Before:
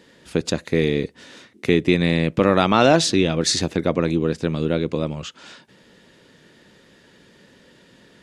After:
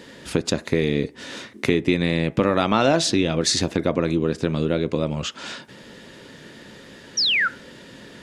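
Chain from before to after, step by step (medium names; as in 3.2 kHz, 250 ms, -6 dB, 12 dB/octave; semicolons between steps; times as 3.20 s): compression 2:1, threshold -33 dBFS, peak gain reduction 12.5 dB; painted sound fall, 7.17–7.48 s, 1.3–6 kHz -28 dBFS; on a send: reverberation RT60 0.50 s, pre-delay 3 ms, DRR 14 dB; on the sum: trim +8.5 dB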